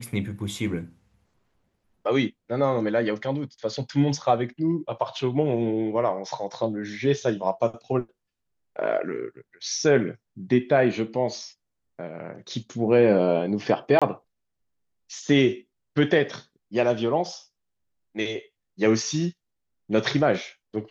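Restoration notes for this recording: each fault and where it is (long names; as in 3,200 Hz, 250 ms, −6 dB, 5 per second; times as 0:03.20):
0:13.99–0:14.02: drop-out 26 ms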